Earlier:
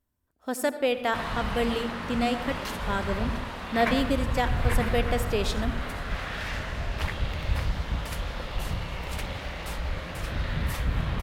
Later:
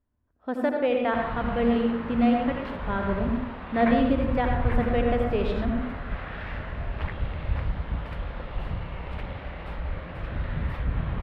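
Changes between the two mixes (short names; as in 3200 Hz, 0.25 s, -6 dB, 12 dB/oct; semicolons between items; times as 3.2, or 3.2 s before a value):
speech: send +11.5 dB; master: add air absorption 470 m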